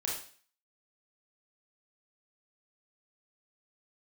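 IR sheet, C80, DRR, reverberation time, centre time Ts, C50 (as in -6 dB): 7.5 dB, -3.5 dB, 0.45 s, 42 ms, 3.0 dB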